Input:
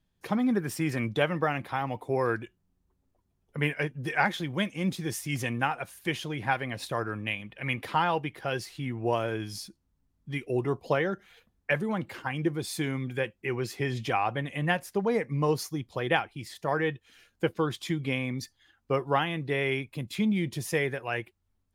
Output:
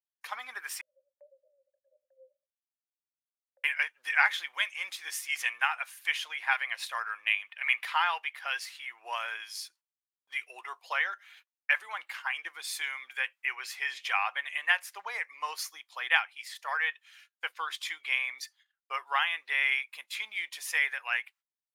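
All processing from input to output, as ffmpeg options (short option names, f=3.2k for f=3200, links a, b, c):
-filter_complex "[0:a]asettb=1/sr,asplit=3[a][b][c];[a]atrim=end=0.814[d];[b]atrim=start=0.81:end=3.64,asetpts=PTS-STARTPTS,afade=t=in:d=0.004:c=qsin,afade=t=out:st=2.826:d=0.004:c=qsin,asoftclip=type=hard:threshold=-29dB,asuperpass=centerf=560:order=12:qfactor=6.5,aecho=1:1:6:0.37,atrim=end_sample=124803[e];[c]atrim=start=3.636[f];[d][e]acrossfade=d=0.004:c1=hsin:c2=qsin[g];[g][f]acrossfade=d=0.004:c1=qsin:c2=hsin,agate=range=-22dB:threshold=-57dB:ratio=16:detection=peak,highpass=f=970:w=0.5412,highpass=f=970:w=1.3066,adynamicequalizer=threshold=0.00631:dfrequency=2200:dqfactor=1.2:tfrequency=2200:tqfactor=1.2:attack=5:release=100:ratio=0.375:range=3:mode=boostabove:tftype=bell"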